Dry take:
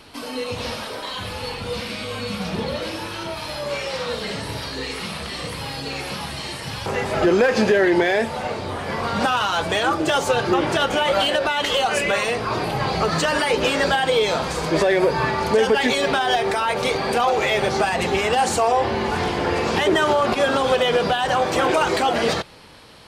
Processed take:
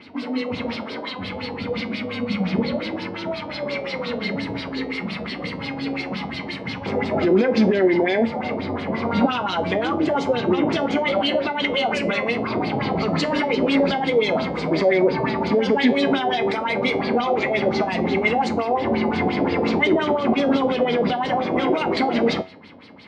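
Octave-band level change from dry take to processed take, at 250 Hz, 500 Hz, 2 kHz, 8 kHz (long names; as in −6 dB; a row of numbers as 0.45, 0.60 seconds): +5.0 dB, −1.0 dB, −3.0 dB, below −15 dB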